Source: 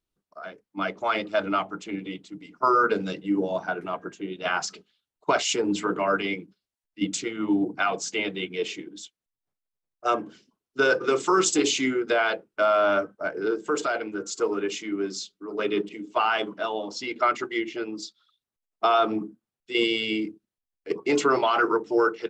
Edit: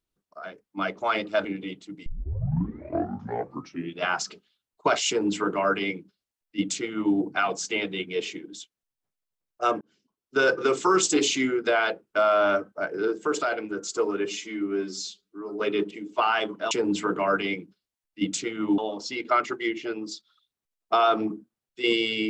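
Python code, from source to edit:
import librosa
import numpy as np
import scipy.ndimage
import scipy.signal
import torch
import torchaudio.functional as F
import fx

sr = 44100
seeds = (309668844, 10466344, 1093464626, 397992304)

y = fx.edit(x, sr, fx.cut(start_s=1.45, length_s=0.43),
    fx.tape_start(start_s=2.49, length_s=2.0),
    fx.duplicate(start_s=5.51, length_s=2.07, to_s=16.69),
    fx.fade_in_span(start_s=10.24, length_s=0.63),
    fx.stretch_span(start_s=14.68, length_s=0.9, factor=1.5), tone=tone)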